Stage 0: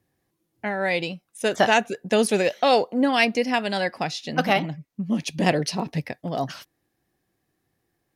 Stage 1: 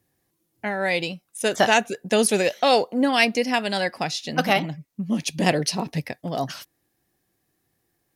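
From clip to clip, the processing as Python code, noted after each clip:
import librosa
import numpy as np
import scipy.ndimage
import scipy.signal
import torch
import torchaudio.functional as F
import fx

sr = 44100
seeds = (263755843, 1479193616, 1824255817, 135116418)

y = fx.high_shelf(x, sr, hz=5300.0, db=8.0)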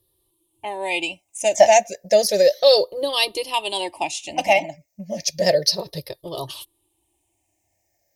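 y = fx.spec_ripple(x, sr, per_octave=0.62, drift_hz=-0.32, depth_db=16)
y = fx.fixed_phaser(y, sr, hz=590.0, stages=4)
y = y + 0.54 * np.pad(y, (int(3.3 * sr / 1000.0), 0))[:len(y)]
y = y * 10.0 ** (1.0 / 20.0)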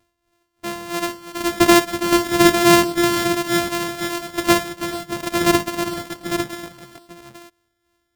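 y = np.r_[np.sort(x[:len(x) // 128 * 128].reshape(-1, 128), axis=1).ravel(), x[len(x) // 128 * 128:]]
y = y * (1.0 - 0.69 / 2.0 + 0.69 / 2.0 * np.cos(2.0 * np.pi * 2.9 * (np.arange(len(y)) / sr)))
y = fx.echo_multitap(y, sr, ms=(57, 328, 426, 449, 851), db=(-15.0, -11.5, -17.0, -17.5, -6.5))
y = y * 10.0 ** (2.0 / 20.0)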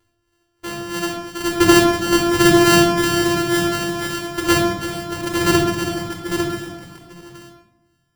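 y = fx.room_shoebox(x, sr, seeds[0], volume_m3=2900.0, walls='furnished', distance_m=4.3)
y = y * 10.0 ** (-2.5 / 20.0)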